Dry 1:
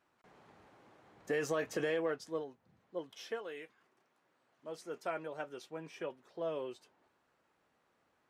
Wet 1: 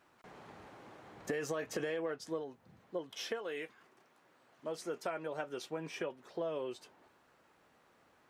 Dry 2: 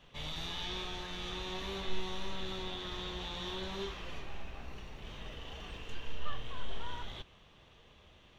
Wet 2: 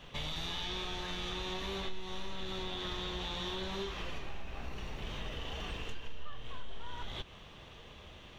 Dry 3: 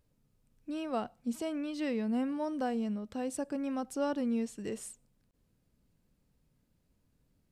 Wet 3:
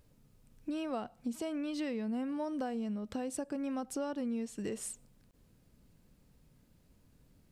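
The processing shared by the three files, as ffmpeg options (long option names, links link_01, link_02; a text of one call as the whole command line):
ffmpeg -i in.wav -af "acompressor=threshold=-44dB:ratio=4,volume=8dB" out.wav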